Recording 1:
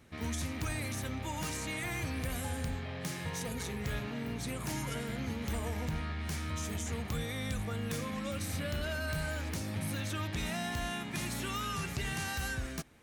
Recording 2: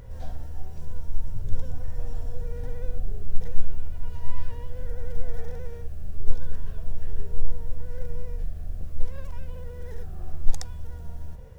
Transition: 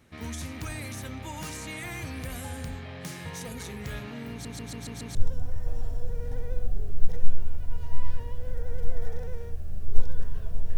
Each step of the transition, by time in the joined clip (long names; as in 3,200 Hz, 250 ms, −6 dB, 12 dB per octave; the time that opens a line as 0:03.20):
recording 1
0:04.31: stutter in place 0.14 s, 6 plays
0:05.15: continue with recording 2 from 0:01.47